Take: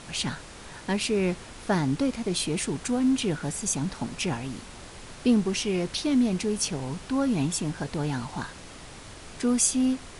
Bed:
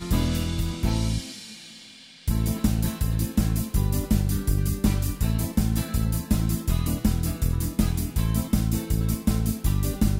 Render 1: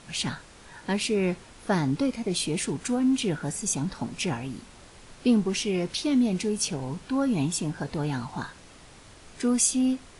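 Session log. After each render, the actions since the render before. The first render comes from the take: noise print and reduce 6 dB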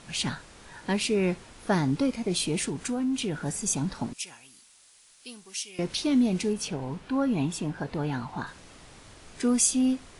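2.68–3.46 compressor 2:1, threshold -28 dBFS; 4.13–5.79 pre-emphasis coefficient 0.97; 6.53–8.47 tone controls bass -2 dB, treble -8 dB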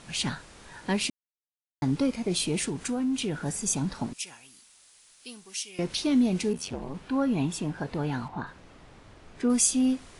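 1.1–1.82 mute; 6.52–6.93 ring modulator 27 Hz -> 140 Hz; 8.28–9.5 LPF 1800 Hz 6 dB/oct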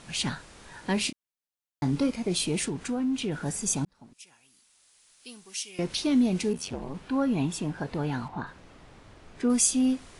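0.94–2.1 doubler 28 ms -10 dB; 2.68–3.32 high shelf 6400 Hz -9 dB; 3.85–5.64 fade in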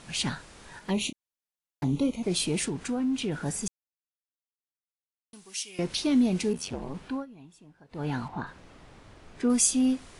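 0.79–2.23 envelope flanger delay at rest 6.4 ms, full sweep at -26.5 dBFS; 3.68–5.33 mute; 7.06–8.09 dip -22.5 dB, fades 0.20 s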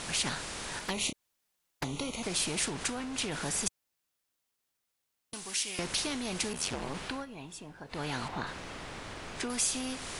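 compressor 2:1, threshold -31 dBFS, peak gain reduction 7 dB; spectral compressor 2:1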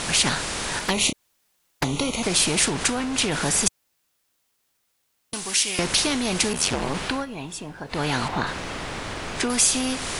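gain +11 dB

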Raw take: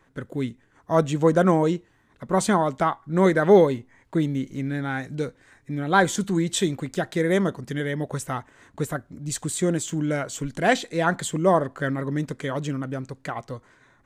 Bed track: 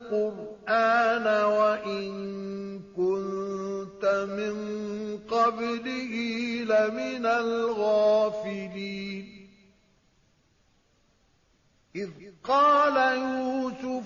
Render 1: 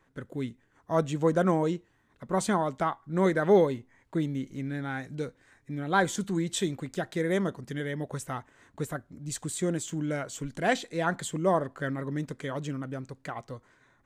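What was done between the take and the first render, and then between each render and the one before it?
gain -6 dB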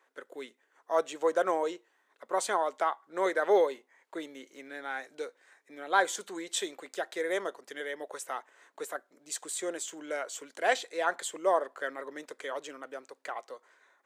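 HPF 430 Hz 24 dB/oct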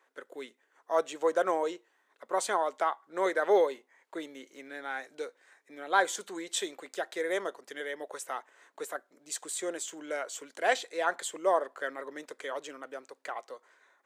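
nothing audible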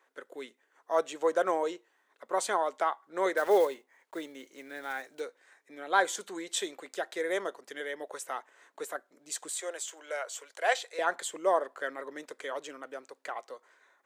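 3.37–5.22 block floating point 5-bit; 9.48–10.99 HPF 480 Hz 24 dB/oct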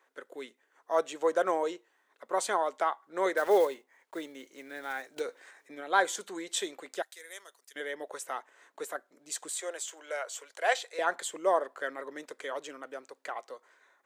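5.16–5.81 transient shaper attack +4 dB, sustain +9 dB; 7.02–7.76 differentiator

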